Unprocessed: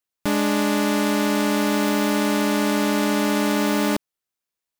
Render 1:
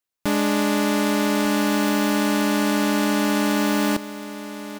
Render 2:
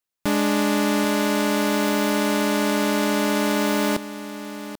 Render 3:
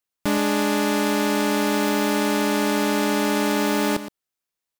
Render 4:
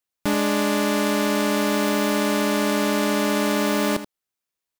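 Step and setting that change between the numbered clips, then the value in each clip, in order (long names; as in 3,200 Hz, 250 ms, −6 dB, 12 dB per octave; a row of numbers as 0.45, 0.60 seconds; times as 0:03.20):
single-tap delay, delay time: 1,198, 788, 118, 80 milliseconds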